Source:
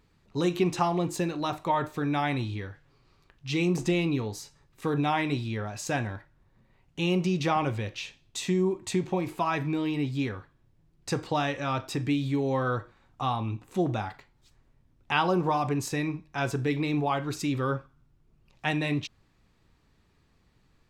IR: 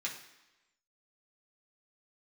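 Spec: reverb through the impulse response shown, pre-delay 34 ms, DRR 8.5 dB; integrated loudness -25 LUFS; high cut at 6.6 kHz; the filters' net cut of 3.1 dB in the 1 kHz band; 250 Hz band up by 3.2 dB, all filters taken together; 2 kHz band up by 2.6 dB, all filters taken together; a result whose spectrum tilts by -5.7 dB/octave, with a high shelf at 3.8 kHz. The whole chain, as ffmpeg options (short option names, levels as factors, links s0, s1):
-filter_complex "[0:a]lowpass=6600,equalizer=f=250:t=o:g=5,equalizer=f=1000:t=o:g=-5.5,equalizer=f=2000:t=o:g=6.5,highshelf=f=3800:g=-5.5,asplit=2[s0][s1];[1:a]atrim=start_sample=2205,adelay=34[s2];[s1][s2]afir=irnorm=-1:irlink=0,volume=0.282[s3];[s0][s3]amix=inputs=2:normalize=0,volume=1.26"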